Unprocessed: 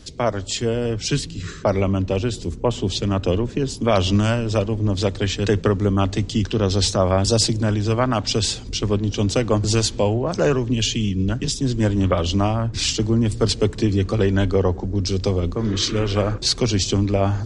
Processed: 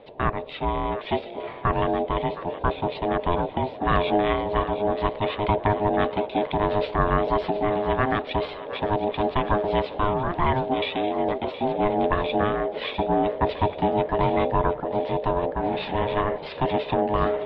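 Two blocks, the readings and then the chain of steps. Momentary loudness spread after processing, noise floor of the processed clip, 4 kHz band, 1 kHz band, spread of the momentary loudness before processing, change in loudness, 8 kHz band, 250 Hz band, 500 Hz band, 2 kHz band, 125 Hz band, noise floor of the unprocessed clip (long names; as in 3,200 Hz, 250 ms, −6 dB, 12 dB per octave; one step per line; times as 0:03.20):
5 LU, −37 dBFS, −11.5 dB, +5.5 dB, 4 LU, −4.0 dB, below −40 dB, −6.5 dB, −1.5 dB, 0.0 dB, −10.5 dB, −34 dBFS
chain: elliptic low-pass filter 3,000 Hz, stop band 50 dB
ring modulation 520 Hz
feedback echo with a high-pass in the loop 718 ms, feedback 65%, high-pass 780 Hz, level −12.5 dB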